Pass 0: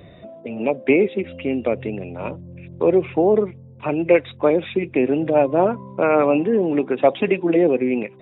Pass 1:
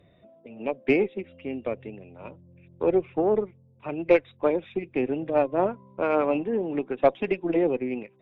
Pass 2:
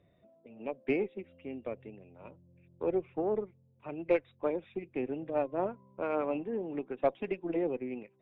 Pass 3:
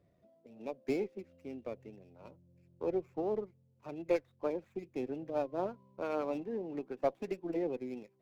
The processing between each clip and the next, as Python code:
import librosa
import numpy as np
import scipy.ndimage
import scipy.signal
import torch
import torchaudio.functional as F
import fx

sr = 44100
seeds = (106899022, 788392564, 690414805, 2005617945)

y1 = fx.cheby_harmonics(x, sr, harmonics=(3, 4), levels_db=(-30, -27), full_scale_db=-3.0)
y1 = fx.upward_expand(y1, sr, threshold_db=-31.0, expansion=1.5)
y1 = y1 * 10.0 ** (-3.5 / 20.0)
y2 = fx.lowpass(y1, sr, hz=3300.0, slope=6)
y2 = y2 * 10.0 ** (-8.5 / 20.0)
y3 = scipy.ndimage.median_filter(y2, 15, mode='constant')
y3 = y3 * 10.0 ** (-3.0 / 20.0)